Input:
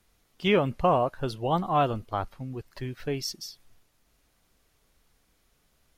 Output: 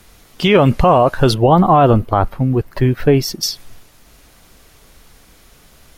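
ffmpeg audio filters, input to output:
ffmpeg -i in.wav -filter_complex "[0:a]asettb=1/sr,asplit=3[link_01][link_02][link_03];[link_01]atrim=end=1.344[link_04];[link_02]atrim=start=1.34:end=3.43,asetpts=PTS-STARTPTS,afade=type=in:duration=0.004:curve=qsin,afade=type=out:start_time=2.086:duration=0.004:curve=qsin,equalizer=frequency=5800:width_type=o:width=2.6:gain=-12[link_05];[link_03]atrim=start=3.426[link_06];[link_04][link_05]acrossfade=duration=0.004:curve1=hsin:curve2=qsin[link_07];[link_07][link_06]acrossfade=duration=0.004:curve1=qsin:curve2=hsin,alimiter=level_in=22.5dB:limit=-1dB:release=50:level=0:latency=1,volume=-1.5dB" out.wav

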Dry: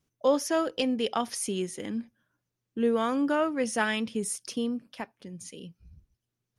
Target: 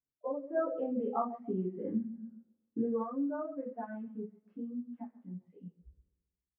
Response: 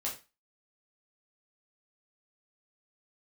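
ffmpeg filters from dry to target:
-filter_complex "[0:a]asplit=2[link_01][link_02];[link_02]adelay=135,lowpass=frequency=1100:poles=1,volume=-12dB,asplit=2[link_03][link_04];[link_04]adelay=135,lowpass=frequency=1100:poles=1,volume=0.54,asplit=2[link_05][link_06];[link_06]adelay=135,lowpass=frequency=1100:poles=1,volume=0.54,asplit=2[link_07][link_08];[link_08]adelay=135,lowpass=frequency=1100:poles=1,volume=0.54,asplit=2[link_09][link_10];[link_10]adelay=135,lowpass=frequency=1100:poles=1,volume=0.54,asplit=2[link_11][link_12];[link_12]adelay=135,lowpass=frequency=1100:poles=1,volume=0.54[link_13];[link_01][link_03][link_05][link_07][link_09][link_11][link_13]amix=inputs=7:normalize=0,acompressor=threshold=-40dB:ratio=3,lowpass=frequency=1800:width=0.5412,lowpass=frequency=1800:width=1.3066[link_14];[1:a]atrim=start_sample=2205[link_15];[link_14][link_15]afir=irnorm=-1:irlink=0,asplit=3[link_16][link_17][link_18];[link_16]afade=type=out:start_time=0.54:duration=0.02[link_19];[link_17]acontrast=59,afade=type=in:start_time=0.54:duration=0.02,afade=type=out:start_time=3.03:duration=0.02[link_20];[link_18]afade=type=in:start_time=3.03:duration=0.02[link_21];[link_19][link_20][link_21]amix=inputs=3:normalize=0,afftdn=noise_reduction=22:noise_floor=-29"

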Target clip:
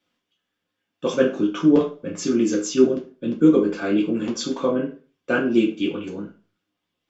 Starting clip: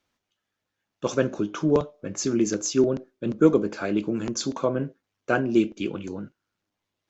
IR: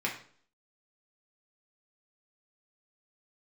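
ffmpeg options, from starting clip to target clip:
-filter_complex "[0:a]asettb=1/sr,asplit=3[link_01][link_02][link_03];[link_01]atrim=end=2.874[link_04];[link_02]atrim=start=2.87:end=3.53,asetpts=PTS-STARTPTS,afade=type=in:duration=0.004:curve=qsin,afade=type=out:start_time=0.656:duration=0.004:curve=qsin,acrossover=split=350|3000[link_05][link_06][link_07];[link_06]acompressor=threshold=-42dB:ratio=1.5[link_08];[link_05][link_08][link_07]amix=inputs=3:normalize=0[link_09];[link_03]atrim=start=3.526[link_10];[link_04][link_09]acrossfade=duration=0.004:curve1=hsin:curve2=qsin[link_11];[link_11][link_10]acrossfade=duration=0.004:curve1=qsin:curve2=hsin[link_12];[1:a]atrim=start_sample=2205,asetrate=61740,aresample=44100[link_13];[link_12][link_13]afir=irnorm=-1:irlink=0"

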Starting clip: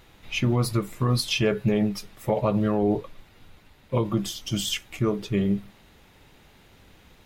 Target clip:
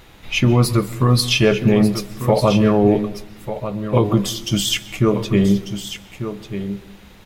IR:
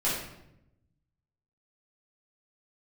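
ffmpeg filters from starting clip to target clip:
-filter_complex "[0:a]aecho=1:1:1194:0.299,asplit=2[link_01][link_02];[1:a]atrim=start_sample=2205,adelay=123[link_03];[link_02][link_03]afir=irnorm=-1:irlink=0,volume=-27.5dB[link_04];[link_01][link_04]amix=inputs=2:normalize=0,volume=8dB"

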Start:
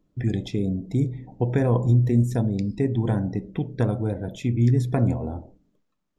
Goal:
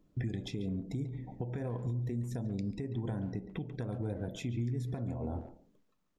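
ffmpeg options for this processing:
ffmpeg -i in.wav -filter_complex "[0:a]acompressor=threshold=-25dB:ratio=6,alimiter=level_in=3.5dB:limit=-24dB:level=0:latency=1:release=479,volume=-3.5dB,asplit=2[link_01][link_02];[link_02]adelay=140,highpass=300,lowpass=3400,asoftclip=type=hard:threshold=-36dB,volume=-11dB[link_03];[link_01][link_03]amix=inputs=2:normalize=0" out.wav

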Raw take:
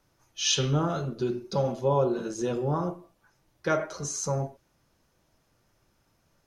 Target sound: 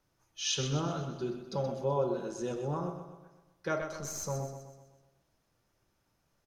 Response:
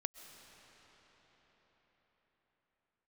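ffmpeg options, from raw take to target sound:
-filter_complex "[0:a]asettb=1/sr,asplit=3[link_01][link_02][link_03];[link_01]atrim=end=3.814[link_04];[link_02]atrim=start=3.81:end=4.24,asetpts=PTS-STARTPTS,afade=type=in:duration=0.004:curve=qsin,afade=type=out:start_time=0.426:duration=0.004:curve=qsin,aeval=exprs='0.0794*(cos(1*acos(clip(val(0)/0.0794,-1,1)))-cos(1*PI/2))+0.0112*(cos(4*acos(clip(val(0)/0.0794,-1,1)))-cos(4*PI/2))':channel_layout=same[link_05];[link_03]atrim=start=4.236[link_06];[link_04][link_05]acrossfade=duration=0.004:curve1=hsin:curve2=qsin[link_07];[link_07][link_06]acrossfade=duration=0.004:curve1=qsin:curve2=hsin,aecho=1:1:126|252|378|504|630|756:0.355|0.177|0.0887|0.0444|0.0222|0.0111,volume=-7dB"

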